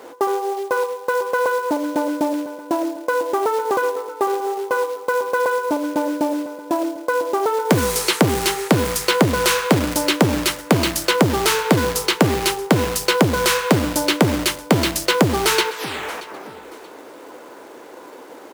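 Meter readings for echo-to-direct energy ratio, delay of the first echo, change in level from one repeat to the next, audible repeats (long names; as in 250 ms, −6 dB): −18.5 dB, 629 ms, −11.5 dB, 2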